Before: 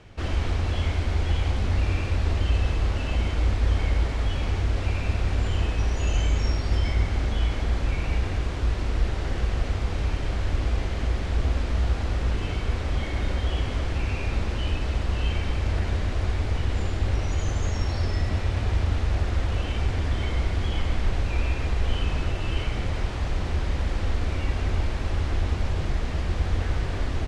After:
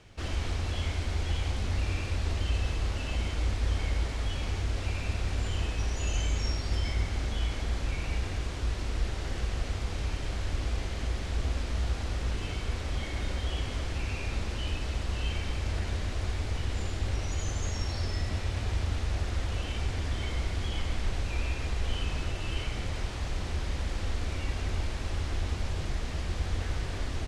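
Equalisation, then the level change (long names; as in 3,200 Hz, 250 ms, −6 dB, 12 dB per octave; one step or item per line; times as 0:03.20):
high-shelf EQ 3,800 Hz +10 dB
−6.5 dB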